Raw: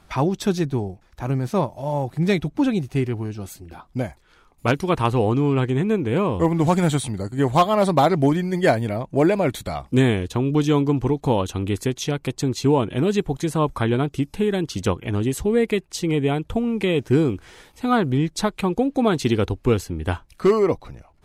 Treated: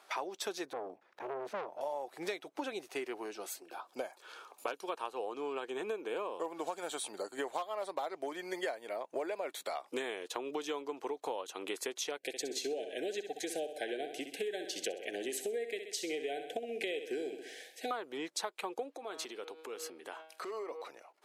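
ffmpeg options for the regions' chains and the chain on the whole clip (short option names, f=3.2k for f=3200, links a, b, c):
-filter_complex "[0:a]asettb=1/sr,asplit=3[a][b][c];[a]atrim=end=0.734[d];[b]atrim=start=0.73:end=1.81,asetpts=PTS-STARTPTS,afade=t=in:d=0.004:c=qsin,afade=t=out:st=1.076:d=0.004:c=qsin,bass=f=250:g=15,treble=f=4k:g=-14,aeval=exprs='(tanh(11.2*val(0)+0.55)-tanh(0.55))/11.2':c=same[e];[c]atrim=start=1.806[f];[d][e]acrossfade=d=0.004:c1=hsin:c2=qsin[g];[g][f]acrossfade=d=0.004:c1=qsin:c2=hsin,asettb=1/sr,asplit=3[h][i][j];[h]atrim=end=3.624[k];[i]atrim=start=3.62:end=7.35,asetpts=PTS-STARTPTS,afade=t=in:d=0.004:c=qsin,afade=t=out:st=3.726:d=0.004:c=qsin,bandreject=f=2k:w=5.1,acompressor=mode=upward:threshold=-36dB:ratio=2.5:attack=3.2:release=140:knee=2.83:detection=peak[l];[j]atrim=start=7.346[m];[k][l]acrossfade=d=0.004:c1=hsin:c2=qsin[n];[n][m]acrossfade=d=0.004:c1=qsin:c2=hsin,asettb=1/sr,asplit=3[o][p][q];[o]atrim=end=12.174[r];[p]atrim=start=12.17:end=17.91,asetpts=PTS-STARTPTS,afade=t=in:d=0.004:c=qsin,afade=t=out:st=5.736:d=0.004:c=qsin,asuperstop=centerf=1100:order=20:qfactor=1.5,aecho=1:1:64|128|192|256|320:0.316|0.145|0.0669|0.0308|0.0142,atrim=end_sample=253134[s];[q]atrim=start=17.906[t];[r][s]acrossfade=d=0.004:c1=hsin:c2=qsin[u];[u][t]acrossfade=d=0.004:c1=qsin:c2=hsin,asettb=1/sr,asplit=3[v][w][x];[v]atrim=end=18.954[y];[w]atrim=start=18.95:end=20.82,asetpts=PTS-STARTPTS,afade=t=in:d=0.004:c=qsin,afade=t=out:st=1.866:d=0.004:c=qsin,bandreject=f=159.3:t=h:w=4,bandreject=f=318.6:t=h:w=4,bandreject=f=477.9:t=h:w=4,bandreject=f=637.2:t=h:w=4,bandreject=f=796.5:t=h:w=4,bandreject=f=955.8:t=h:w=4,bandreject=f=1.1151k:t=h:w=4,bandreject=f=1.2744k:t=h:w=4,bandreject=f=1.4337k:t=h:w=4,bandreject=f=1.593k:t=h:w=4,bandreject=f=1.7523k:t=h:w=4,bandreject=f=1.9116k:t=h:w=4,bandreject=f=2.0709k:t=h:w=4,bandreject=f=2.2302k:t=h:w=4,bandreject=f=2.3895k:t=h:w=4,bandreject=f=2.5488k:t=h:w=4,bandreject=f=2.7081k:t=h:w=4,bandreject=f=2.8674k:t=h:w=4,bandreject=f=3.0267k:t=h:w=4,bandreject=f=3.186k:t=h:w=4,bandreject=f=3.3453k:t=h:w=4,bandreject=f=3.5046k:t=h:w=4,bandreject=f=3.6639k:t=h:w=4,bandreject=f=3.8232k:t=h:w=4,bandreject=f=3.9825k:t=h:w=4,bandreject=f=4.1418k:t=h:w=4,bandreject=f=4.3011k:t=h:w=4,bandreject=f=4.4604k:t=h:w=4,bandreject=f=4.6197k:t=h:w=4,bandreject=f=4.779k:t=h:w=4,bandreject=f=4.9383k:t=h:w=4,acompressor=threshold=-30dB:ratio=16:attack=3.2:release=140:knee=1:detection=peak[z];[x]atrim=start=20.816[aa];[y][z]acrossfade=d=0.004:c1=hsin:c2=qsin[ab];[ab][aa]acrossfade=d=0.004:c1=qsin:c2=hsin,highpass=f=430:w=0.5412,highpass=f=430:w=1.3066,acompressor=threshold=-32dB:ratio=10,volume=-2.5dB"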